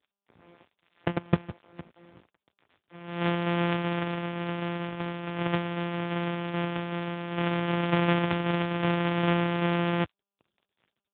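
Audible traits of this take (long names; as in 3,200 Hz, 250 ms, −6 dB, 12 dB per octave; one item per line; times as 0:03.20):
a buzz of ramps at a fixed pitch in blocks of 256 samples
tremolo saw down 2.6 Hz, depth 35%
a quantiser's noise floor 10 bits, dither none
AMR narrowband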